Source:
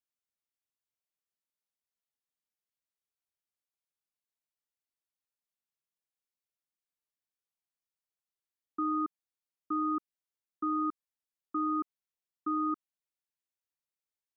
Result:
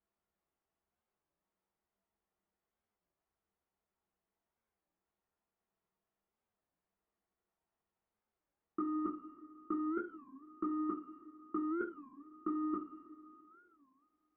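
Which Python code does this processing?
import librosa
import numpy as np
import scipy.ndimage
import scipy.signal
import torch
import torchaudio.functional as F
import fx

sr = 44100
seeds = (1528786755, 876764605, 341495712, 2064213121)

y = scipy.signal.sosfilt(scipy.signal.butter(2, 1100.0, 'lowpass', fs=sr, output='sos'), x)
y = fx.over_compress(y, sr, threshold_db=-37.0, ratio=-0.5)
y = fx.rev_double_slope(y, sr, seeds[0], early_s=0.29, late_s=2.6, knee_db=-18, drr_db=-2.5)
y = fx.record_warp(y, sr, rpm=33.33, depth_cents=250.0)
y = y * librosa.db_to_amplitude(2.5)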